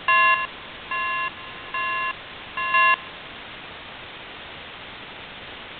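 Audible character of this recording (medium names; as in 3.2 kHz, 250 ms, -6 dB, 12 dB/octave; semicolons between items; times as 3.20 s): a buzz of ramps at a fixed pitch in blocks of 16 samples; chopped level 0.73 Hz, depth 65%, duty 25%; a quantiser's noise floor 6-bit, dither triangular; G.726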